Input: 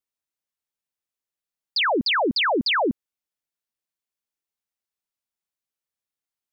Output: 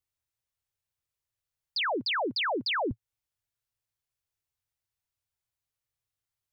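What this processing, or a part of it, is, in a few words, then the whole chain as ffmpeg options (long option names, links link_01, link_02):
car stereo with a boomy subwoofer: -filter_complex "[0:a]lowshelf=frequency=150:width_type=q:width=3:gain=10,alimiter=level_in=1.5dB:limit=-24dB:level=0:latency=1:release=205,volume=-1.5dB,asettb=1/sr,asplit=3[link_01][link_02][link_03];[link_01]atrim=end=1.934[link_04];[link_02]atrim=start=1.93:end=2.77,asetpts=PTS-STARTPTS,afade=type=in:duration=0.004:curve=qsin,afade=type=out:start_time=0.836:duration=0.004:curve=qsin,highpass=230[link_05];[link_03]atrim=start=2.766[link_06];[link_04][link_05]acrossfade=duration=0.004:curve1=hsin:curve2=qsin[link_07];[link_07][link_06]acrossfade=duration=0.004:curve1=qsin:curve2=hsin"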